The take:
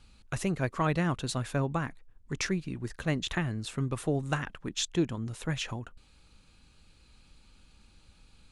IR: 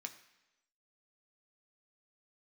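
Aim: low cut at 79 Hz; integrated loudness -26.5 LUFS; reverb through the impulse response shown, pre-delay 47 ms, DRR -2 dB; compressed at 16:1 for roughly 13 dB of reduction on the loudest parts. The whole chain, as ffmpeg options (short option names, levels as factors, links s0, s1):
-filter_complex "[0:a]highpass=79,acompressor=threshold=0.0178:ratio=16,asplit=2[s0][s1];[1:a]atrim=start_sample=2205,adelay=47[s2];[s1][s2]afir=irnorm=-1:irlink=0,volume=1.78[s3];[s0][s3]amix=inputs=2:normalize=0,volume=3.55"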